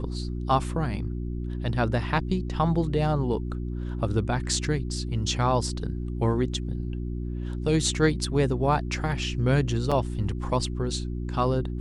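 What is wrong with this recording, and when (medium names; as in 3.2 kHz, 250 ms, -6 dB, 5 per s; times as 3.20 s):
hum 60 Hz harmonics 6 -31 dBFS
9.91–9.92 s: dropout 5.7 ms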